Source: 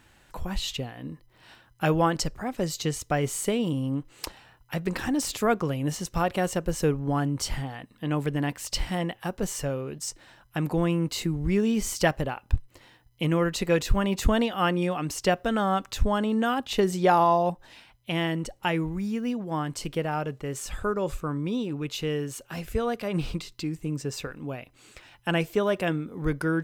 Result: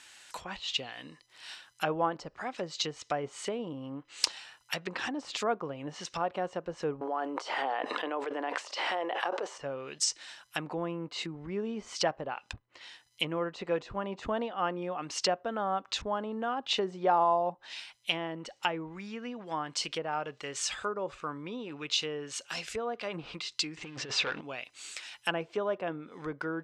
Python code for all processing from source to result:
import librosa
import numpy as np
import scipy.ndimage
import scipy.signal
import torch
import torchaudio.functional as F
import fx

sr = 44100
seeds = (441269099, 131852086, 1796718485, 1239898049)

y = fx.chain(x, sr, fx.highpass(hz=370.0, slope=24),
    fx.env_flatten(amount_pct=100), at=(7.01, 9.58))
y = fx.chain(y, sr, fx.over_compress(threshold_db=-35.0, ratio=-0.5),
    fx.leveller(passes=3),
    fx.air_absorb(metres=90.0), at=(23.77, 24.41))
y = fx.dynamic_eq(y, sr, hz=1900.0, q=1.2, threshold_db=-44.0, ratio=4.0, max_db=-5)
y = fx.env_lowpass_down(y, sr, base_hz=970.0, full_db=-23.5)
y = fx.weighting(y, sr, curve='ITU-R 468')